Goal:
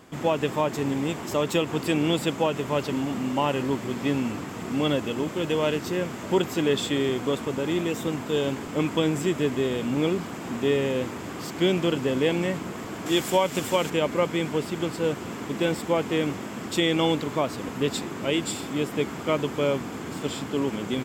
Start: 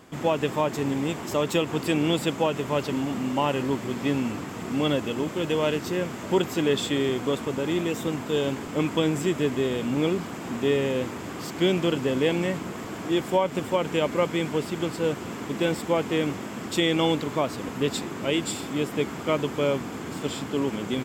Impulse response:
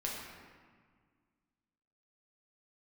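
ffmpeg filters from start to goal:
-filter_complex "[0:a]asettb=1/sr,asplit=3[s0][s1][s2];[s0]atrim=end=13.064[s3];[s1]atrim=start=13.06:end=13.9,asetpts=PTS-STARTPTS,afade=t=in:d=0.004:c=qsin,afade=t=out:st=0.836:d=0.004:c=qsin,highshelf=f=2800:g=11.5[s4];[s2]atrim=start=13.896[s5];[s3][s4]acrossfade=d=0.004:c1=hsin:c2=qsin[s6];[s6][s5]acrossfade=d=0.004:c1=qsin:c2=hsin"

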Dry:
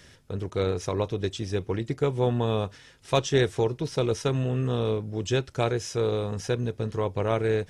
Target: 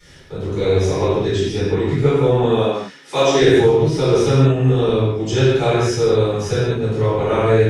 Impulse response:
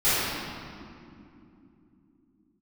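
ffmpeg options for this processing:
-filter_complex "[0:a]asettb=1/sr,asplit=3[s0][s1][s2];[s0]atrim=end=0.464[s3];[s1]atrim=start=0.46:end=0.94,asetpts=PTS-STARTPTS,afade=t=in:d=0.004:c=qsin,afade=t=out:st=0.476:d=0.004:c=qsin,bandreject=f=1300:w=5.2[s4];[s2]atrim=start=0.936[s5];[s3][s4]acrossfade=d=0.004:c1=hsin:c2=qsin[s6];[s6][s5]acrossfade=d=0.004:c1=qsin:c2=hsin,asettb=1/sr,asplit=3[s7][s8][s9];[s7]atrim=end=2.434[s10];[s8]atrim=start=2.43:end=3.42,asetpts=PTS-STARTPTS,afade=t=in:d=0.004:c=qsin,afade=t=out:st=0.986:d=0.004:c=qsin,highpass=f=190:w=0.5412,highpass=f=190:w=1.3066[s11];[s9]atrim=start=3.416[s12];[s10][s11]acrossfade=d=0.004:c1=hsin:c2=qsin[s13];[s13][s12]acrossfade=d=0.004:c1=qsin:c2=hsin[s14];[1:a]atrim=start_sample=2205,afade=t=out:st=0.28:d=0.01,atrim=end_sample=12789[s15];[s14][s15]afir=irnorm=-1:irlink=0,volume=0.501"

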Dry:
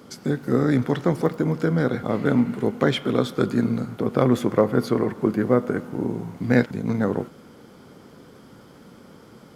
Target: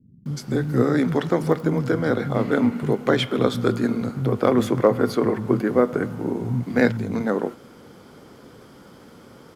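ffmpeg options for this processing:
-filter_complex "[0:a]acrossover=split=190[s0][s1];[s1]adelay=260[s2];[s0][s2]amix=inputs=2:normalize=0,volume=1.26"

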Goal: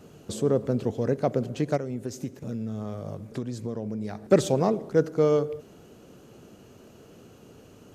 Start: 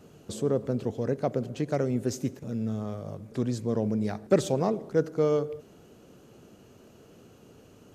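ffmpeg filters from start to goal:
-filter_complex "[0:a]asplit=3[s0][s1][s2];[s0]afade=t=out:st=1.76:d=0.02[s3];[s1]acompressor=threshold=0.0251:ratio=6,afade=t=in:st=1.76:d=0.02,afade=t=out:st=4.24:d=0.02[s4];[s2]afade=t=in:st=4.24:d=0.02[s5];[s3][s4][s5]amix=inputs=3:normalize=0,volume=1.41"

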